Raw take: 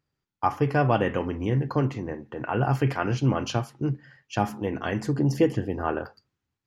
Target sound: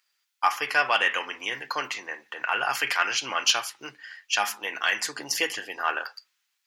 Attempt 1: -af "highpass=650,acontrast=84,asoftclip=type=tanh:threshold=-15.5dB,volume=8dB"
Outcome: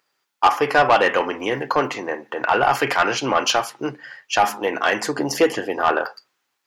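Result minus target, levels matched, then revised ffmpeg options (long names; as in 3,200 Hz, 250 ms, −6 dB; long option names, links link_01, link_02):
500 Hz band +10.0 dB
-af "highpass=2000,acontrast=84,asoftclip=type=tanh:threshold=-15.5dB,volume=8dB"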